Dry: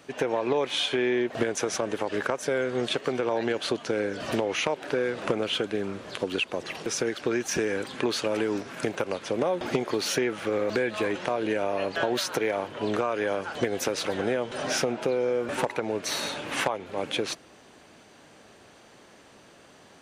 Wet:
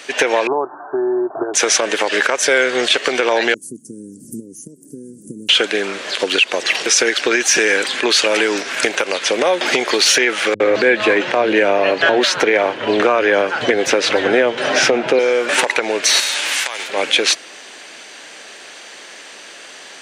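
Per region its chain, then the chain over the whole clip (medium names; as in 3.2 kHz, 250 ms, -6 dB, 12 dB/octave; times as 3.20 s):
0.47–1.54 s: brick-wall FIR low-pass 1.8 kHz + static phaser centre 340 Hz, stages 8
3.54–5.49 s: inverse Chebyshev band-stop 700–3900 Hz, stop band 60 dB + peaking EQ 74 Hz +5 dB 2.7 oct + upward compressor, threshold -46 dBFS
10.54–15.19 s: RIAA curve playback + bands offset in time lows, highs 60 ms, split 170 Hz
16.19–16.87 s: formants flattened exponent 0.6 + high-pass 500 Hz 6 dB/octave + compression 16:1, threshold -34 dBFS
whole clip: high-pass 380 Hz 12 dB/octave; high-order bell 3.8 kHz +9 dB 2.8 oct; loudness maximiser +14 dB; trim -2 dB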